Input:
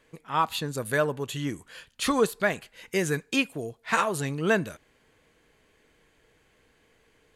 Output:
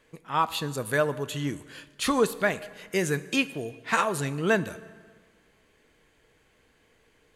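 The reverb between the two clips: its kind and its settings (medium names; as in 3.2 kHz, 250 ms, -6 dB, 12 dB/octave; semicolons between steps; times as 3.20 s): plate-style reverb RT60 1.6 s, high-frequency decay 0.75×, DRR 15 dB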